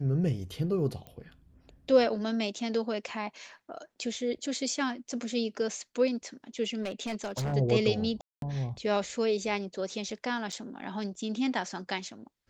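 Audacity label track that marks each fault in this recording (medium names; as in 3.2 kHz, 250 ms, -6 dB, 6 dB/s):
1.070000	1.070000	pop -30 dBFS
6.820000	7.540000	clipped -29 dBFS
8.210000	8.420000	dropout 212 ms
10.520000	10.530000	dropout 6.3 ms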